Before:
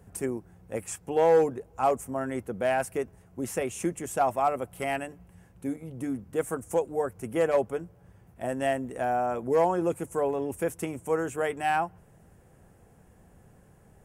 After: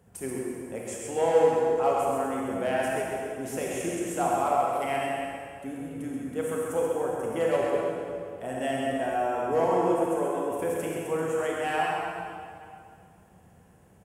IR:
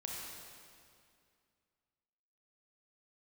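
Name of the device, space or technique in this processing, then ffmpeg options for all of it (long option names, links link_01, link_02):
PA in a hall: -filter_complex "[0:a]asettb=1/sr,asplit=3[link_01][link_02][link_03];[link_01]atrim=end=10.004[link_04];[link_02]atrim=start=10:end=10.51,asetpts=PTS-STARTPTS,afade=type=in:duration=0.004:curve=qsin,afade=type=out:start_time=0.506:duration=0.004:curve=qsin,highpass=frequency=180:width=0.5412,highpass=frequency=180:width=1.3066[link_05];[link_03]atrim=start=10.506[link_06];[link_04][link_05]acrossfade=duration=0.004:curve1=hsin:curve2=qsin[link_07];[link_07][link_06]acrossfade=duration=0.004:curve1=qsin:curve2=hsin,highpass=frequency=110:poles=1,equalizer=frequency=3100:width_type=o:width=0.44:gain=4,aecho=1:1:132:0.562[link_08];[1:a]atrim=start_sample=2205[link_09];[link_08][link_09]afir=irnorm=-1:irlink=0"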